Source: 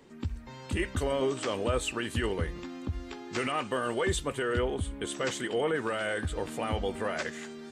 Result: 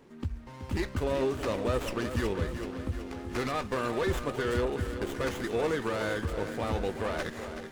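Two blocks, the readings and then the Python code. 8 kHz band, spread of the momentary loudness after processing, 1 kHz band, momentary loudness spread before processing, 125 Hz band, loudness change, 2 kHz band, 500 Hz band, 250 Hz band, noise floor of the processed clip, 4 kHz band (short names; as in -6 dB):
-6.5 dB, 7 LU, -0.5 dB, 9 LU, +1.0 dB, 0.0 dB, -2.0 dB, +0.5 dB, +1.0 dB, -46 dBFS, -4.0 dB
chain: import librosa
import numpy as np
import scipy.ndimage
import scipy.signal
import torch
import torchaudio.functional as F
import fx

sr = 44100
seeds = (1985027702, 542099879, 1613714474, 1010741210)

p1 = x + fx.echo_feedback(x, sr, ms=376, feedback_pct=59, wet_db=-10.0, dry=0)
y = fx.running_max(p1, sr, window=9)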